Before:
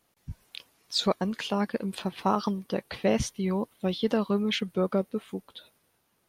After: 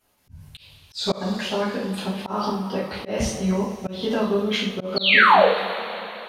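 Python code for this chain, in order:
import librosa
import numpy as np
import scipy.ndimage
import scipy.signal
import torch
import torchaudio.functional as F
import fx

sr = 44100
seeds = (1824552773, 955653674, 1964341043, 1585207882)

y = fx.spec_paint(x, sr, seeds[0], shape='fall', start_s=4.96, length_s=0.51, low_hz=430.0, high_hz=4600.0, level_db=-19.0)
y = fx.rev_double_slope(y, sr, seeds[1], early_s=0.48, late_s=3.8, knee_db=-18, drr_db=-8.0)
y = fx.auto_swell(y, sr, attack_ms=170.0)
y = F.gain(torch.from_numpy(y), -3.0).numpy()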